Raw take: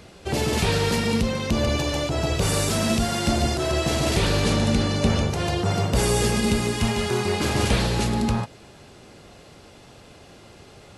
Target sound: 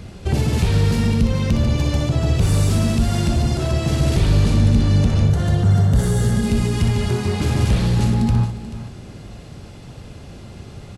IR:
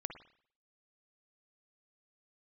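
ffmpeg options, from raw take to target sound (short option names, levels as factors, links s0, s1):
-filter_complex "[0:a]asoftclip=type=tanh:threshold=0.158,asettb=1/sr,asplit=3[s0][s1][s2];[s0]atrim=end=5.294[s3];[s1]atrim=start=5.29:end=6.45,asetpts=PTS-STARTPTS,afade=t=in:d=0.004:c=qsin,afade=t=out:st=1.156:d=0.004:c=qsin,equalizer=f=315:t=o:w=0.33:g=-6,equalizer=f=1000:t=o:w=0.33:g=-4,equalizer=f=1600:t=o:w=0.33:g=4,equalizer=f=2500:t=o:w=0.33:g=-12,equalizer=f=5000:t=o:w=0.33:g=-6[s4];[s2]atrim=start=6.446[s5];[s3][s4]acrossfade=d=0.004:c1=hsin:c2=qsin[s6];[s6][s5]acrossfade=d=0.004:c1=qsin:c2=hsin,acompressor=threshold=0.0398:ratio=2.5,bass=f=250:g=13,treble=f=4000:g=0,aecho=1:1:61|435:0.398|0.211,volume=1.26"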